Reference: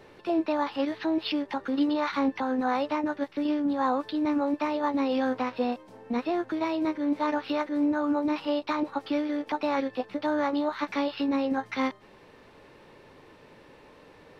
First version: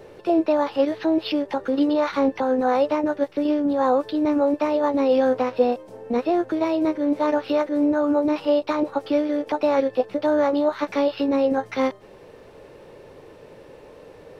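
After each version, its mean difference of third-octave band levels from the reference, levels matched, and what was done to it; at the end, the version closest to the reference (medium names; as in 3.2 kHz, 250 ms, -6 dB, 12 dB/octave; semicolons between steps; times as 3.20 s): 2.5 dB: graphic EQ 250/500/1000/2000/4000 Hz -5/+6/-5/-5/-5 dB; trim +7.5 dB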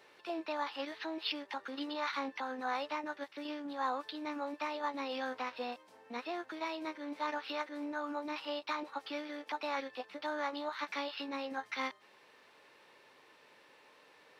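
6.0 dB: high-pass 1.4 kHz 6 dB/octave; trim -2.5 dB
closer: first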